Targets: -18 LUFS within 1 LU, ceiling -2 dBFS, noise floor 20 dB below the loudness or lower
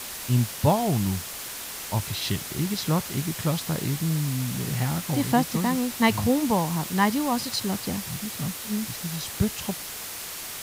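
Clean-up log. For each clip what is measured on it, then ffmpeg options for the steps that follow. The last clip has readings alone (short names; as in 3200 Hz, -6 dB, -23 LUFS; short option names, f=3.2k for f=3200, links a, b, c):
noise floor -36 dBFS; noise floor target -47 dBFS; loudness -26.5 LUFS; peak -7.5 dBFS; loudness target -18.0 LUFS
-> -af "afftdn=nr=11:nf=-36"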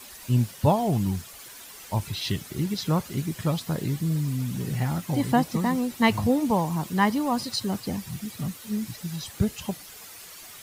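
noise floor -45 dBFS; noise floor target -47 dBFS
-> -af "afftdn=nr=6:nf=-45"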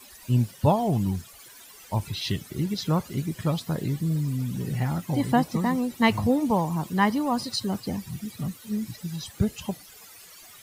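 noise floor -49 dBFS; loudness -27.0 LUFS; peak -7.5 dBFS; loudness target -18.0 LUFS
-> -af "volume=9dB,alimiter=limit=-2dB:level=0:latency=1"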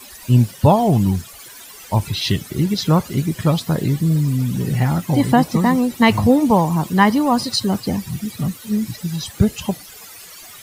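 loudness -18.0 LUFS; peak -2.0 dBFS; noise floor -40 dBFS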